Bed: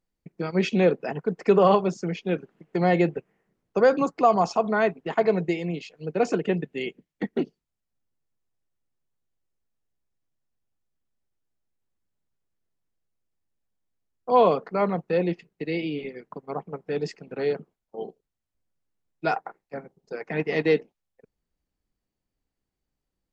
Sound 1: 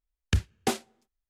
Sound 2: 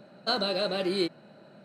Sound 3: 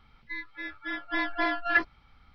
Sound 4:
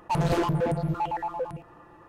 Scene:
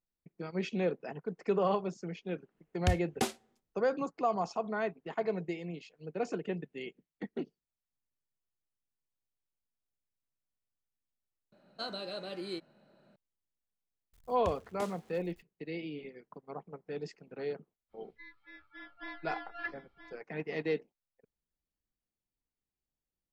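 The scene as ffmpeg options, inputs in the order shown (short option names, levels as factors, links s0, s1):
-filter_complex "[1:a]asplit=2[s0][s1];[0:a]volume=0.266[s2];[s1]aeval=exprs='val(0)+0.5*0.0112*sgn(val(0))':c=same[s3];[3:a]aecho=1:1:972:0.282[s4];[s0]atrim=end=1.29,asetpts=PTS-STARTPTS,volume=0.596,afade=t=in:d=0.004:c=hsin,afade=t=out:st=1.286:d=0.004:c=hsin,adelay=2540[s5];[2:a]atrim=end=1.64,asetpts=PTS-STARTPTS,volume=0.251,afade=t=in:d=0.004:c=hsin,afade=t=out:st=1.636:d=0.004:c=hsin,adelay=11520[s6];[s3]atrim=end=1.29,asetpts=PTS-STARTPTS,volume=0.126,afade=t=in:d=0.004:c=hsin,afade=t=out:st=1.286:d=0.004:c=hsin,adelay=14130[s7];[s4]atrim=end=2.34,asetpts=PTS-STARTPTS,volume=0.168,afade=t=in:d=0.05,afade=t=out:st=2.29:d=0.05,adelay=17890[s8];[s2][s5][s6][s7][s8]amix=inputs=5:normalize=0"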